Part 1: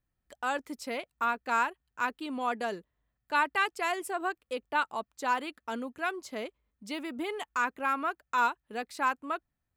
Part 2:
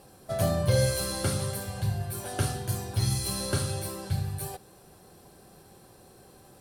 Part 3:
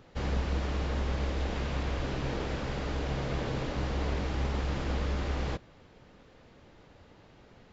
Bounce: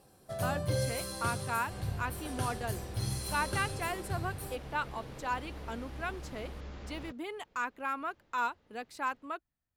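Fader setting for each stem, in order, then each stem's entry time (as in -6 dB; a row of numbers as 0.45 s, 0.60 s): -5.5 dB, -8.0 dB, -13.0 dB; 0.00 s, 0.00 s, 1.55 s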